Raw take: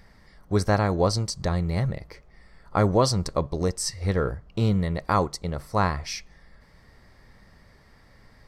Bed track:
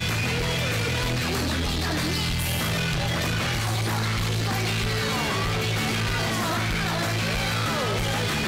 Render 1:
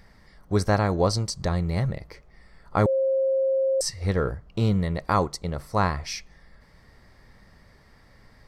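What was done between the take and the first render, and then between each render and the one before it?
2.86–3.81 bleep 534 Hz -19.5 dBFS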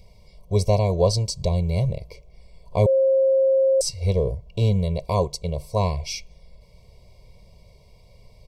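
elliptic band-stop 950–2300 Hz, stop band 60 dB; comb 1.8 ms, depth 94%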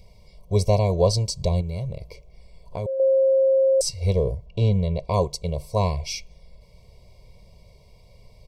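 1.61–3 compressor 3:1, threshold -28 dBFS; 4.46–5.14 air absorption 94 m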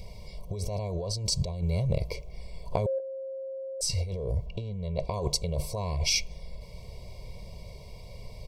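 limiter -14 dBFS, peak gain reduction 7.5 dB; negative-ratio compressor -31 dBFS, ratio -1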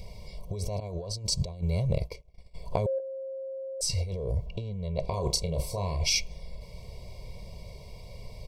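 0.8–2.55 expander -29 dBFS; 5.01–6.01 doubler 31 ms -8 dB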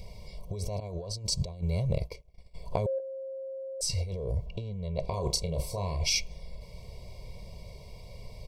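gain -1.5 dB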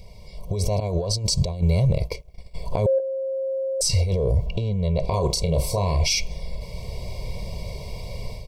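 AGC gain up to 13 dB; limiter -12.5 dBFS, peak gain reduction 9.5 dB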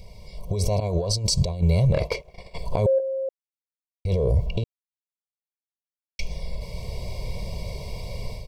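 1.93–2.58 overdrive pedal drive 20 dB, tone 1700 Hz, clips at -12 dBFS; 3.29–4.05 mute; 4.64–6.19 mute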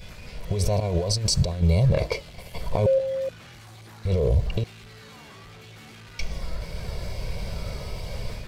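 add bed track -20.5 dB

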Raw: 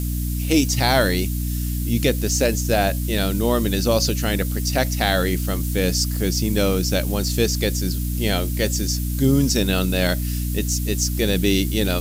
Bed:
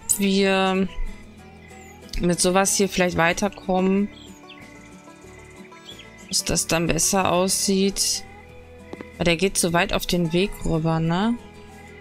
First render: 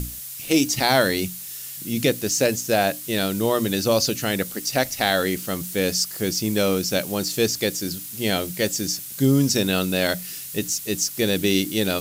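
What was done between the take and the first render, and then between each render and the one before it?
notches 60/120/180/240/300 Hz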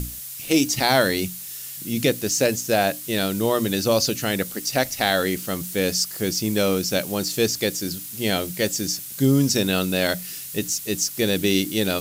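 nothing audible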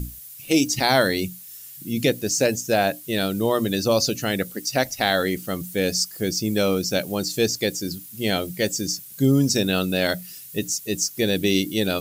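denoiser 10 dB, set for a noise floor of -35 dBFS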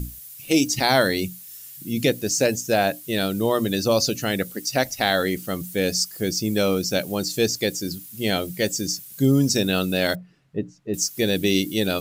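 10.15–10.94 LPF 1100 Hz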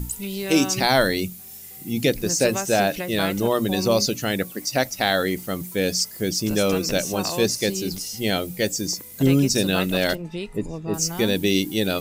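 add bed -10.5 dB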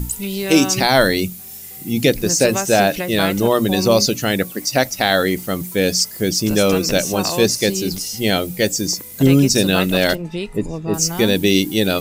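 gain +5.5 dB; limiter -2 dBFS, peak gain reduction 2.5 dB

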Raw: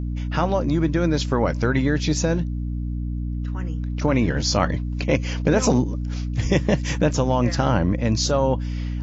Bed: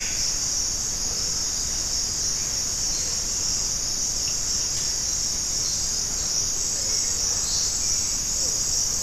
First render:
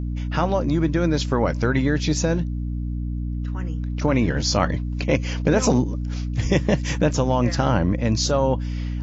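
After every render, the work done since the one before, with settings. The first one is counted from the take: nothing audible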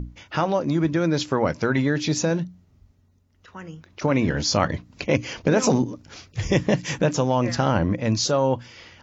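notches 60/120/180/240/300 Hz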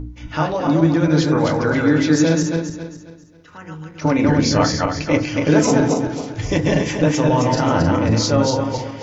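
regenerating reverse delay 0.135 s, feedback 58%, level -2 dB; FDN reverb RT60 0.31 s, low-frequency decay 1.2×, high-frequency decay 0.4×, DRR 3.5 dB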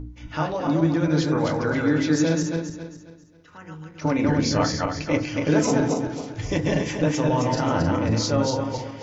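gain -5.5 dB

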